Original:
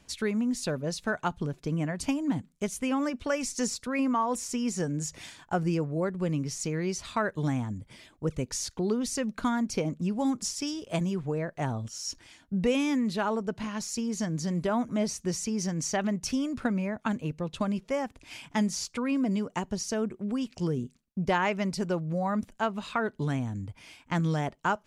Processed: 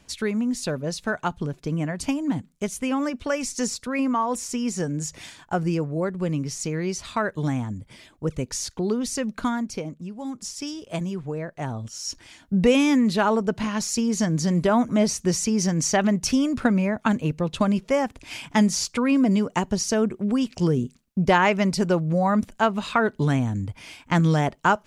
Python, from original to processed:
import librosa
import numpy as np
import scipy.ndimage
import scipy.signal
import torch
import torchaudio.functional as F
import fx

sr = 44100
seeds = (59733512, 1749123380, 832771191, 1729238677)

y = fx.gain(x, sr, db=fx.line((9.44, 3.5), (10.15, -7.0), (10.61, 0.5), (11.64, 0.5), (12.59, 8.0)))